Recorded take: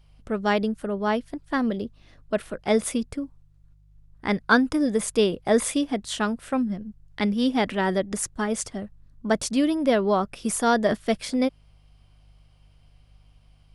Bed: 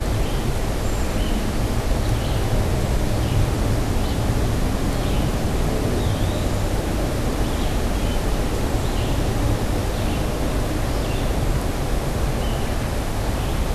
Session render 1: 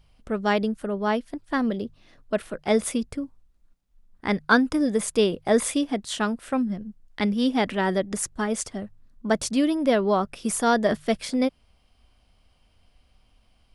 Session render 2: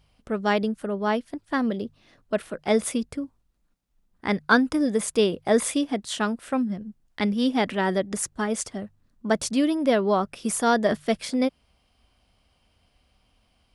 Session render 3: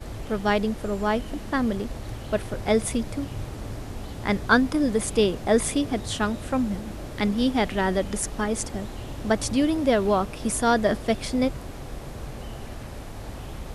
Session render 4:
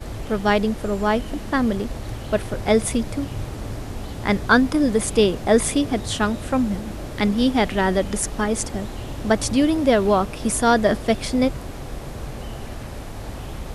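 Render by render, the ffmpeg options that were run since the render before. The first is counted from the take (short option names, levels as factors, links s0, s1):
-af "bandreject=f=50:t=h:w=4,bandreject=f=100:t=h:w=4,bandreject=f=150:t=h:w=4"
-af "highpass=f=68:p=1"
-filter_complex "[1:a]volume=0.2[s0];[0:a][s0]amix=inputs=2:normalize=0"
-af "volume=1.58,alimiter=limit=0.708:level=0:latency=1"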